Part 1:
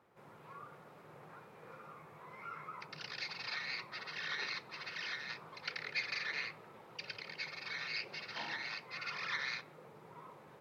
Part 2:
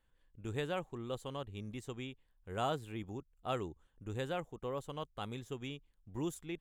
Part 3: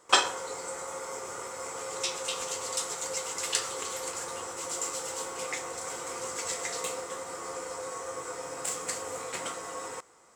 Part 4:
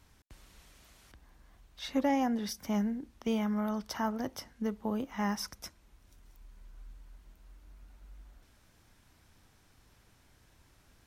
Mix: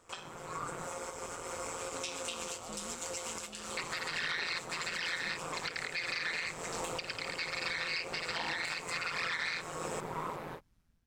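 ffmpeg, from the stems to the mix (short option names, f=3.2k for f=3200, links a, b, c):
-filter_complex "[0:a]dynaudnorm=f=130:g=3:m=11dB,volume=0.5dB,asplit=3[a][b][c];[a]atrim=end=0.88,asetpts=PTS-STARTPTS,afade=t=out:st=0.876:d=0.004:c=hsin[d];[b]atrim=start=0.88:end=3.77,asetpts=PTS-STARTPTS,volume=0[e];[c]atrim=start=3.77,asetpts=PTS-STARTPTS,afade=t=in:d=0.004:c=hsin[f];[d][e][f]concat=n=3:v=0:a=1[g];[1:a]highpass=190,volume=-18.5dB,asplit=2[h][i];[2:a]equalizer=f=2.5k:t=o:w=0.81:g=5.5,bandreject=f=2k:w=11,volume=-3dB[j];[3:a]alimiter=level_in=6dB:limit=-24dB:level=0:latency=1,volume=-6dB,volume=-18dB[k];[i]apad=whole_len=456823[l];[j][l]sidechaincompress=threshold=-59dB:ratio=8:attack=5.1:release=199[m];[h][m][k]amix=inputs=3:normalize=0,lowshelf=f=110:g=12,acompressor=threshold=-40dB:ratio=8,volume=0dB[n];[g][n]amix=inputs=2:normalize=0,dynaudnorm=f=490:g=3:m=7dB,tremolo=f=170:d=0.71,alimiter=level_in=0.5dB:limit=-24dB:level=0:latency=1:release=321,volume=-0.5dB"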